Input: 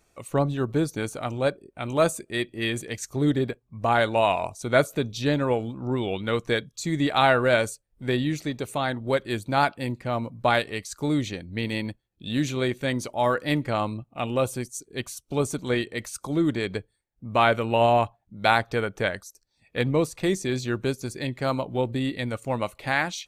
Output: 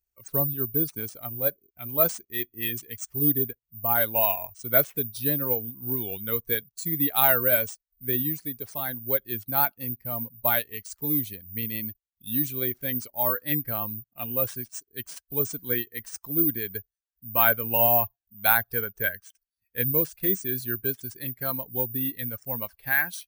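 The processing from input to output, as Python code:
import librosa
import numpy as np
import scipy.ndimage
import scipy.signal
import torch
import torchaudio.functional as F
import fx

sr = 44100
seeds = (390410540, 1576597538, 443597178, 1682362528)

y = fx.bin_expand(x, sr, power=1.5)
y = (np.kron(y[::3], np.eye(3)[0]) * 3)[:len(y)]
y = fx.peak_eq(y, sr, hz=1600.0, db=fx.steps((0.0, 2.5), (13.37, 11.5)), octaves=0.21)
y = y * librosa.db_to_amplitude(-3.5)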